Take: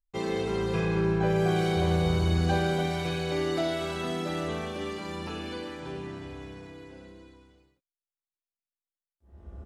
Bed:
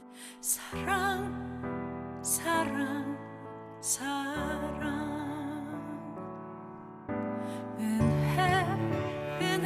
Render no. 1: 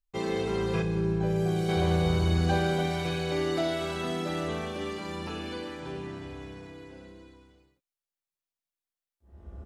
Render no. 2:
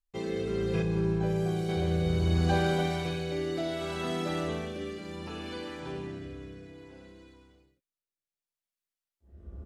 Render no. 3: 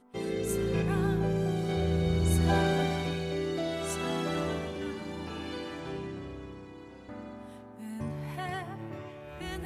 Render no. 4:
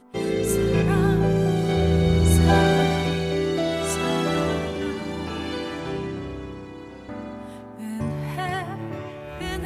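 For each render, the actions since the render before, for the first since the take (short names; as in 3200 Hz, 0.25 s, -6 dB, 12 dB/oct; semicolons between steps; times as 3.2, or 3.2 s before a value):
0.82–1.69 bell 1500 Hz -9.5 dB 3 oct
rotary speaker horn 0.65 Hz
add bed -9.5 dB
gain +8.5 dB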